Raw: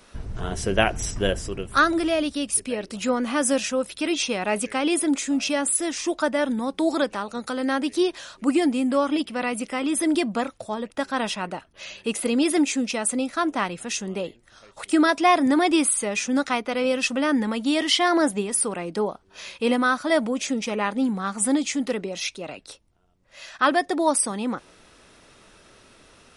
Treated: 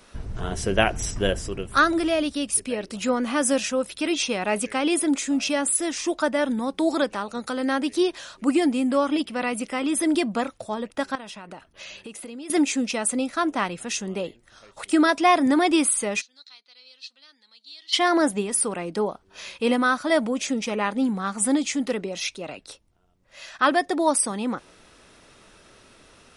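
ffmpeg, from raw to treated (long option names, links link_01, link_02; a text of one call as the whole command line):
ffmpeg -i in.wav -filter_complex "[0:a]asettb=1/sr,asplit=3[link_01][link_02][link_03];[link_01]atrim=end=11.154[link_04];[link_02]atrim=start=11.15:end=12.5,asetpts=PTS-STARTPTS,afade=type=in:duration=0.004:curve=qsin,afade=type=out:start_time=1.346:duration=0.004:curve=qsin,acompressor=threshold=-35dB:ratio=8:attack=3.2:release=140:knee=1:detection=peak[link_05];[link_03]atrim=start=12.496[link_06];[link_04][link_05]acrossfade=duration=0.004:curve1=hsin:curve2=qsin[link_07];[link_07][link_06]acrossfade=duration=0.004:curve1=qsin:curve2=hsin,asplit=3[link_08][link_09][link_10];[link_08]afade=type=out:start_time=16.2:duration=0.02[link_11];[link_09]bandpass=frequency=4200:width_type=q:width=14,afade=type=in:start_time=16.2:duration=0.02,afade=type=out:start_time=17.92:duration=0.02[link_12];[link_10]afade=type=in:start_time=17.92:duration=0.02[link_13];[link_11][link_12][link_13]amix=inputs=3:normalize=0" out.wav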